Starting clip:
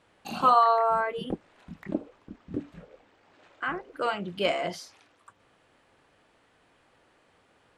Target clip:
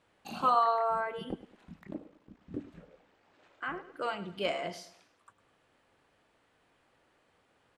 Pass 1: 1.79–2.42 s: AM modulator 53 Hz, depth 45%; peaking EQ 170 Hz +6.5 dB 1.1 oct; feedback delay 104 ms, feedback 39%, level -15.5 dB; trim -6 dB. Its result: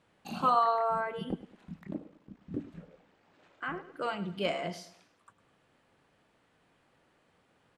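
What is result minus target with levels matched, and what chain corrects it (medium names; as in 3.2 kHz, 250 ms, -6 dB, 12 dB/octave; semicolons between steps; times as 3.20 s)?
125 Hz band +5.5 dB
1.79–2.42 s: AM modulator 53 Hz, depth 45%; feedback delay 104 ms, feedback 39%, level -15.5 dB; trim -6 dB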